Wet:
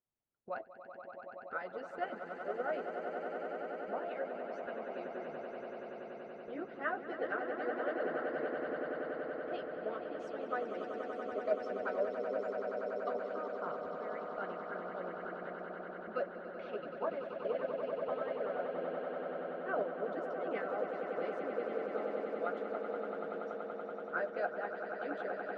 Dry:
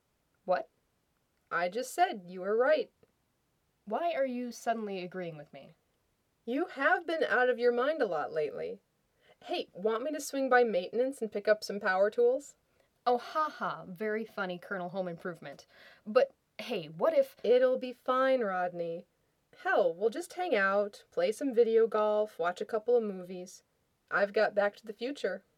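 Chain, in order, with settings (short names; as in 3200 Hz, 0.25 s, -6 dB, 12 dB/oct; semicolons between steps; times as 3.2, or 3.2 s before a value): LPF 1800 Hz 12 dB/oct; gate -49 dBFS, range -11 dB; flange 0.19 Hz, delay 8.1 ms, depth 4.4 ms, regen +49%; swelling echo 95 ms, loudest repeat 8, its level -8 dB; harmonic-percussive split harmonic -15 dB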